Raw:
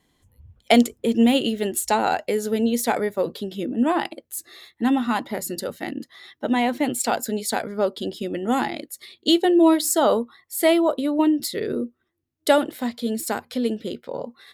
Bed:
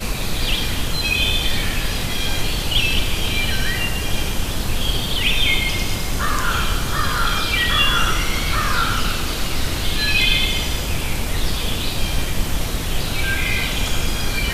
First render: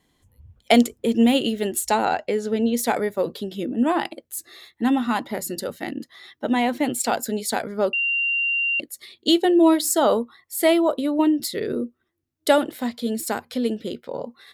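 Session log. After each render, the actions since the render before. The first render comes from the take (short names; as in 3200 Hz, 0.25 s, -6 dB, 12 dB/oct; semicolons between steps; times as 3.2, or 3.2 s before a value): 2.05–2.77 air absorption 75 m; 7.93–8.8 bleep 2770 Hz -19.5 dBFS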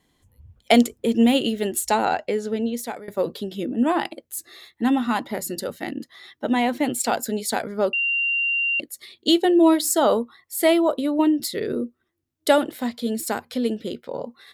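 2.08–3.08 fade out equal-power, to -20 dB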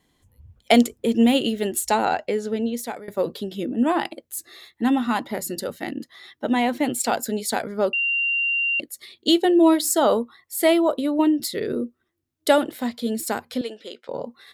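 13.61–14.09 BPF 610–7900 Hz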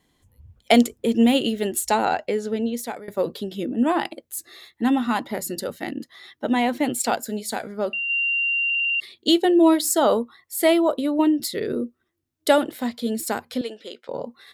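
7.15–8.1 resonator 70 Hz, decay 0.34 s, harmonics odd, mix 40%; 8.65 stutter in place 0.05 s, 7 plays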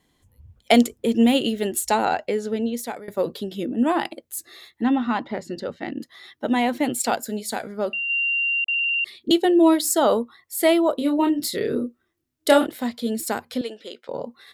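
4.83–5.97 air absorption 160 m; 8.64–9.31 dispersion highs, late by 44 ms, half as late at 510 Hz; 10.97–12.67 doubler 28 ms -4 dB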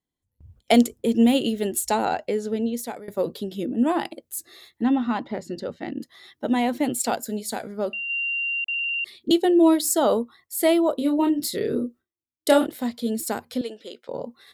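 gate with hold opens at -42 dBFS; bell 1800 Hz -4.5 dB 2.5 oct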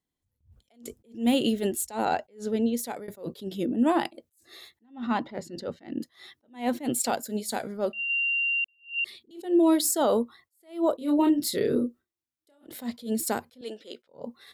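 limiter -14.5 dBFS, peak gain reduction 9 dB; attack slew limiter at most 190 dB/s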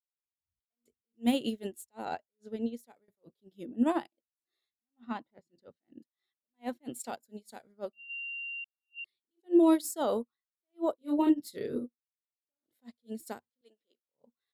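upward expander 2.5:1, over -43 dBFS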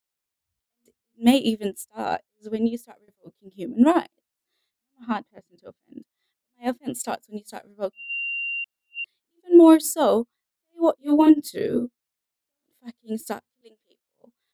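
gain +10.5 dB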